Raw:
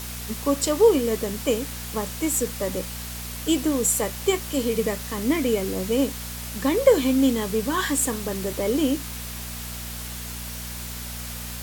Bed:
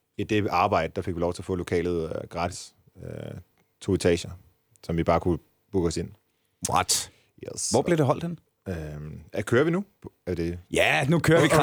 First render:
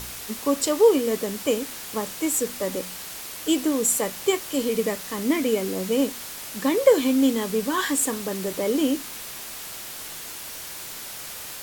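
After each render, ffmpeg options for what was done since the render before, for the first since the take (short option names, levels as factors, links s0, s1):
-af "bandreject=f=60:t=h:w=4,bandreject=f=120:t=h:w=4,bandreject=f=180:t=h:w=4,bandreject=f=240:t=h:w=4"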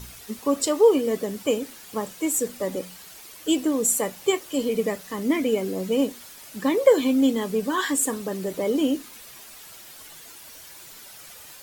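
-af "afftdn=nr=10:nf=-37"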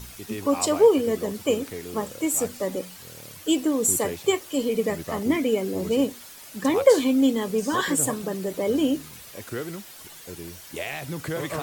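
-filter_complex "[1:a]volume=0.282[s0];[0:a][s0]amix=inputs=2:normalize=0"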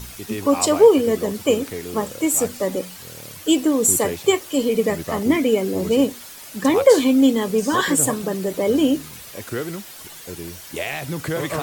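-af "volume=1.78,alimiter=limit=0.794:level=0:latency=1"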